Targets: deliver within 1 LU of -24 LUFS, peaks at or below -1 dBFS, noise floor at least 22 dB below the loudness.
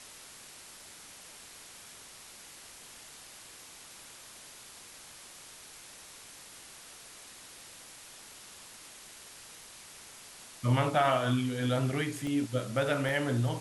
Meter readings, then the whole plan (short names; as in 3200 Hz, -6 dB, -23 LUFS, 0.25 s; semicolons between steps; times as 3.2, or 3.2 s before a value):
dropouts 2; longest dropout 1.5 ms; noise floor -51 dBFS; noise floor target -52 dBFS; loudness -30.0 LUFS; peak -14.5 dBFS; loudness target -24.0 LUFS
-> interpolate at 12.27/13.09, 1.5 ms; denoiser 6 dB, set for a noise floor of -51 dBFS; gain +6 dB